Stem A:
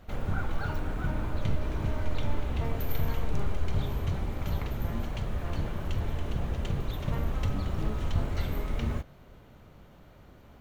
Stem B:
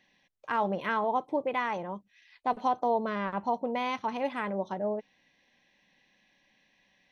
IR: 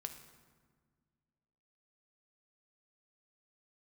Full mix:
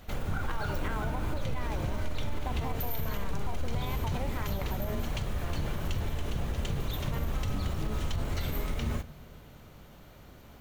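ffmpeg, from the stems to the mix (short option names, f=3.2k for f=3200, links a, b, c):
-filter_complex "[0:a]highshelf=f=3.4k:g=9.5,volume=-1dB,asplit=2[a][b];[b]volume=-7.5dB[c];[1:a]acompressor=threshold=-36dB:ratio=6,volume=1.5dB[d];[2:a]atrim=start_sample=2205[e];[c][e]afir=irnorm=-1:irlink=0[f];[a][d][f]amix=inputs=3:normalize=0,alimiter=limit=-22.5dB:level=0:latency=1:release=78"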